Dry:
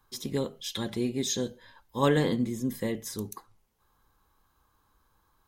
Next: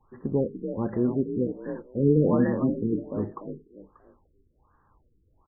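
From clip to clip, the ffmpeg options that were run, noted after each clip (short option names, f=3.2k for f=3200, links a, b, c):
-filter_complex "[0:a]asplit=5[a][b][c][d][e];[b]adelay=293,afreqshift=45,volume=-8dB[f];[c]adelay=586,afreqshift=90,volume=-18.2dB[g];[d]adelay=879,afreqshift=135,volume=-28.3dB[h];[e]adelay=1172,afreqshift=180,volume=-38.5dB[i];[a][f][g][h][i]amix=inputs=5:normalize=0,afftfilt=real='re*lt(b*sr/1024,450*pow(2000/450,0.5+0.5*sin(2*PI*1.3*pts/sr)))':imag='im*lt(b*sr/1024,450*pow(2000/450,0.5+0.5*sin(2*PI*1.3*pts/sr)))':win_size=1024:overlap=0.75,volume=5dB"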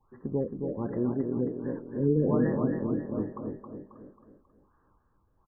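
-af "aecho=1:1:270|540|810|1080|1350:0.531|0.234|0.103|0.0452|0.0199,volume=-4.5dB"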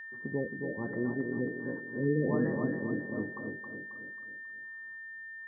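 -af "highpass=96,aeval=exprs='val(0)+0.0126*sin(2*PI*1800*n/s)':c=same,volume=-4dB"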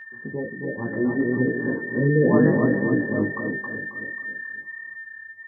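-af "dynaudnorm=f=230:g=9:m=8dB,flanger=delay=15:depth=4.7:speed=1.4,volume=7dB"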